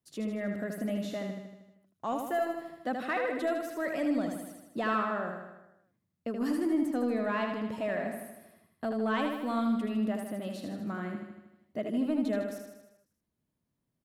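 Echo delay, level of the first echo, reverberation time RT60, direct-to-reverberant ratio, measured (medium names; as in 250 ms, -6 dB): 78 ms, -5.0 dB, no reverb, no reverb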